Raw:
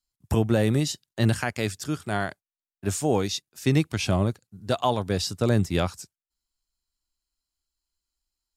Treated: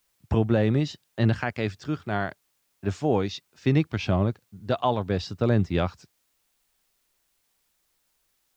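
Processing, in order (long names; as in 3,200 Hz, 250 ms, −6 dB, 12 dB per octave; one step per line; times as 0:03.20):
Gaussian smoothing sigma 2 samples
bit-depth reduction 12 bits, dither triangular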